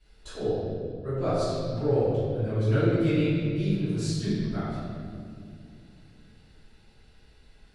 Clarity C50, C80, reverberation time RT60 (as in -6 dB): -3.5 dB, -1.0 dB, 2.3 s